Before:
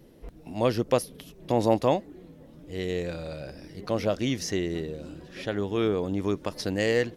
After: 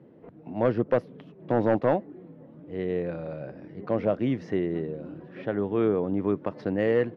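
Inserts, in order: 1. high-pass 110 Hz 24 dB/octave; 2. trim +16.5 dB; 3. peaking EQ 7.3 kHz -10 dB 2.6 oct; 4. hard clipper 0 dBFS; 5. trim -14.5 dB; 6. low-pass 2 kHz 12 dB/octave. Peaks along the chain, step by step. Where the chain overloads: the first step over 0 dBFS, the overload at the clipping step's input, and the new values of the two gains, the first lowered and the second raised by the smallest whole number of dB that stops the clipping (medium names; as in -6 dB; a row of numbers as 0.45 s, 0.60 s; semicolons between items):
-7.5 dBFS, +9.0 dBFS, +8.0 dBFS, 0.0 dBFS, -14.5 dBFS, -14.0 dBFS; step 2, 8.0 dB; step 2 +8.5 dB, step 5 -6.5 dB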